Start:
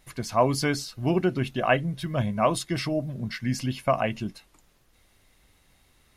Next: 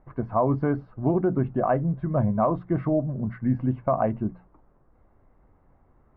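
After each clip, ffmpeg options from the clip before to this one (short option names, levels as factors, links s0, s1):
-af "lowpass=f=1200:w=0.5412,lowpass=f=1200:w=1.3066,bandreject=f=60:t=h:w=6,bandreject=f=120:t=h:w=6,bandreject=f=180:t=h:w=6,alimiter=limit=0.133:level=0:latency=1:release=65,volume=1.68"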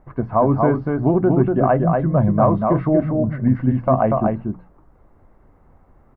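-af "aecho=1:1:239:0.668,volume=2"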